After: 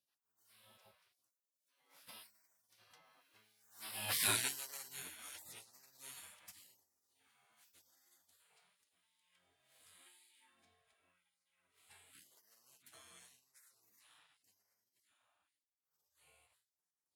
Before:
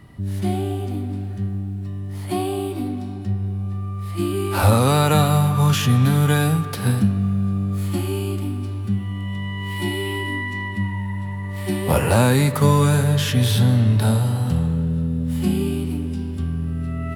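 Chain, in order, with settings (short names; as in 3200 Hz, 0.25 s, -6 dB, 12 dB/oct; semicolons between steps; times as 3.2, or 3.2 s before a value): Doppler pass-by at 4.24, 33 m/s, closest 6.6 m; in parallel at +1 dB: compressor, threshold -41 dBFS, peak gain reduction 27 dB; on the sum: LFO high-pass sine 0.9 Hz 320–3200 Hz; spectral gate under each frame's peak -25 dB weak; gain -2.5 dB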